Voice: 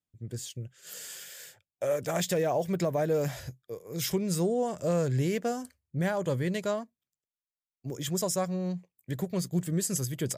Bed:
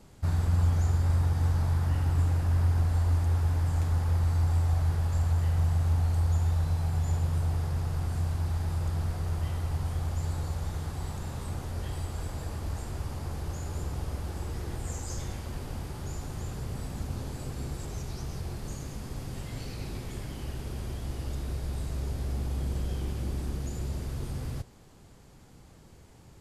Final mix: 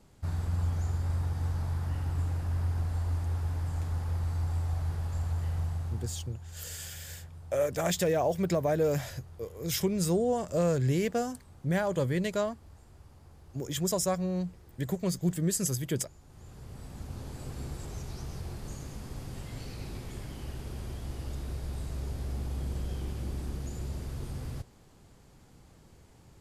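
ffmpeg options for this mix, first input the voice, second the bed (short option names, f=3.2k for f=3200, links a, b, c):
-filter_complex "[0:a]adelay=5700,volume=0.5dB[a];[1:a]volume=10.5dB,afade=t=out:st=5.55:d=0.8:silence=0.211349,afade=t=in:st=16.24:d=1.32:silence=0.158489[b];[a][b]amix=inputs=2:normalize=0"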